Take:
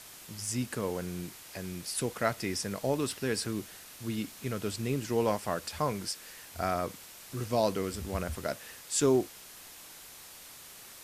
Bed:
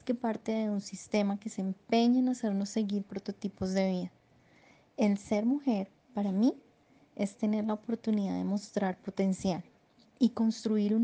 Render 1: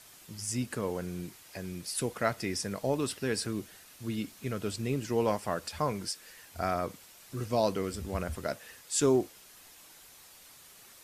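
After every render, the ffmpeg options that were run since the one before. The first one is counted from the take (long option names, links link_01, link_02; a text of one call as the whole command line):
ffmpeg -i in.wav -af "afftdn=noise_reduction=6:noise_floor=-50" out.wav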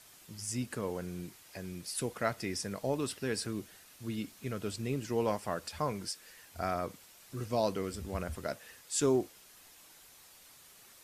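ffmpeg -i in.wav -af "volume=-3dB" out.wav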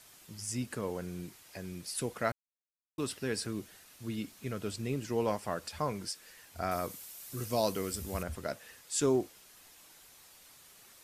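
ffmpeg -i in.wav -filter_complex "[0:a]asettb=1/sr,asplit=3[link_01][link_02][link_03];[link_01]atrim=end=6.714[link_04];[link_02]atrim=start=6.71:end=8.23,asetpts=PTS-STARTPTS,afade=type=in:duration=0.004:curve=qsin,afade=type=out:start_time=1.516:duration=0.004:curve=qsin,aemphasis=mode=production:type=50kf[link_05];[link_03]atrim=start=8.226[link_06];[link_04][link_05]acrossfade=duration=0.004:curve1=hsin:curve2=qsin[link_07];[link_07][link_06]acrossfade=duration=0.004:curve1=qsin:curve2=hsin,asplit=3[link_08][link_09][link_10];[link_08]atrim=end=2.32,asetpts=PTS-STARTPTS,afade=type=out:start_time=2.316:duration=0.004:curve=hsin[link_11];[link_09]atrim=start=2.32:end=2.98,asetpts=PTS-STARTPTS,volume=0[link_12];[link_10]atrim=start=2.98,asetpts=PTS-STARTPTS,afade=type=in:duration=0.004:curve=hsin[link_13];[link_11][link_12][link_13]concat=n=3:v=0:a=1" out.wav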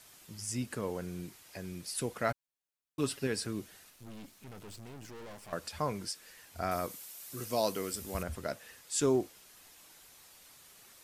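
ffmpeg -i in.wav -filter_complex "[0:a]asettb=1/sr,asplit=3[link_01][link_02][link_03];[link_01]atrim=end=2.284[link_04];[link_02]atrim=start=2.28:end=3.27,asetpts=PTS-STARTPTS,afade=type=in:duration=0.004:curve=qsin,afade=type=out:start_time=0.986:duration=0.004:curve=qsin,aecho=1:1:7.2:0.65,atrim=end_sample=43659[link_05];[link_03]atrim=start=3.266[link_06];[link_04][link_05]acrossfade=duration=0.004:curve1=hsin:curve2=qsin[link_07];[link_07][link_06]acrossfade=duration=0.004:curve1=qsin:curve2=hsin,asettb=1/sr,asplit=3[link_08][link_09][link_10];[link_08]atrim=end=3.904[link_11];[link_09]atrim=start=3.9:end=5.53,asetpts=PTS-STARTPTS,afade=type=in:duration=0.004:curve=qsin,afade=type=out:start_time=1.626:duration=0.004:curve=qsin,aeval=exprs='(tanh(200*val(0)+0.75)-tanh(0.75))/200':channel_layout=same[link_12];[link_10]atrim=start=5.526[link_13];[link_11][link_12]acrossfade=duration=0.004:curve1=hsin:curve2=qsin[link_14];[link_14][link_13]acrossfade=duration=0.004:curve1=qsin:curve2=hsin,asettb=1/sr,asplit=3[link_15][link_16][link_17];[link_15]atrim=end=6.864[link_18];[link_16]atrim=start=6.86:end=8.15,asetpts=PTS-STARTPTS,afade=type=in:duration=0.004:curve=qsin,afade=type=out:start_time=1.286:duration=0.004:curve=qsin,highpass=frequency=200:poles=1[link_19];[link_17]atrim=start=8.146[link_20];[link_18][link_19]acrossfade=duration=0.004:curve1=hsin:curve2=qsin[link_21];[link_21][link_20]acrossfade=duration=0.004:curve1=qsin:curve2=hsin" out.wav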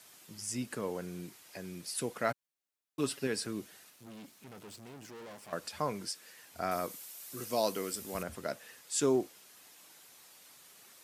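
ffmpeg -i in.wav -af "highpass=150" out.wav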